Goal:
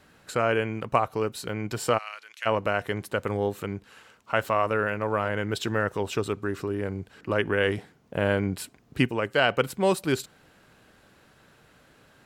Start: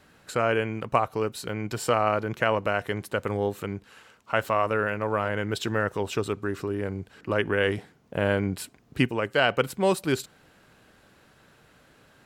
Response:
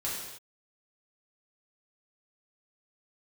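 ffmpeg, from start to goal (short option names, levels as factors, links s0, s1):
-filter_complex "[0:a]asplit=3[s0][s1][s2];[s0]afade=t=out:st=1.97:d=0.02[s3];[s1]asuperpass=centerf=5600:order=4:qfactor=0.62,afade=t=in:st=1.97:d=0.02,afade=t=out:st=2.45:d=0.02[s4];[s2]afade=t=in:st=2.45:d=0.02[s5];[s3][s4][s5]amix=inputs=3:normalize=0"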